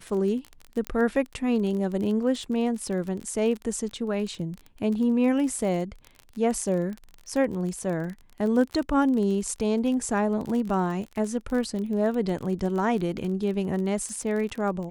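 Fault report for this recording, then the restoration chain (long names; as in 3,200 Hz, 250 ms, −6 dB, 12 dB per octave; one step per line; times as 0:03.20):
surface crackle 25 per second −31 dBFS
0:00.87: click −16 dBFS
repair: click removal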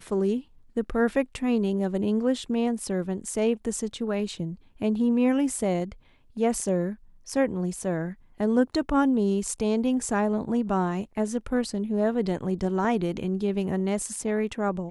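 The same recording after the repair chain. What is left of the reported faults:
none of them is left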